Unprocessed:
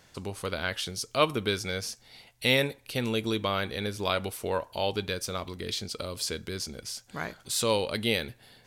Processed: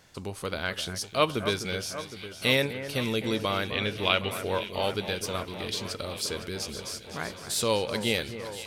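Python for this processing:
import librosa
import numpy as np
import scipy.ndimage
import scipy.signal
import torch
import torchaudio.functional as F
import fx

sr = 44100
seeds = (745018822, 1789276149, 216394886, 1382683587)

y = fx.lowpass_res(x, sr, hz=2900.0, q=4.2, at=(3.71, 4.31))
y = fx.echo_alternate(y, sr, ms=255, hz=2100.0, feedback_pct=86, wet_db=-11.0)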